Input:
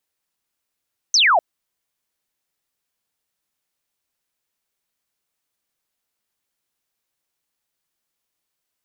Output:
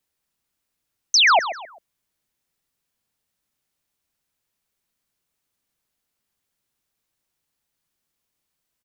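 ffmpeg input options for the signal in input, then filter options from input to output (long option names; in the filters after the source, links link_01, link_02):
-f lavfi -i "aevalsrc='0.266*clip(t/0.002,0,1)*clip((0.25-t)/0.002,0,1)*sin(2*PI*6400*0.25/log(610/6400)*(exp(log(610/6400)*t/0.25)-1))':duration=0.25:sample_rate=44100"
-filter_complex "[0:a]acrossover=split=270[link_01][link_02];[link_01]acontrast=56[link_03];[link_03][link_02]amix=inputs=2:normalize=0,aecho=1:1:131|262|393:0.251|0.0829|0.0274"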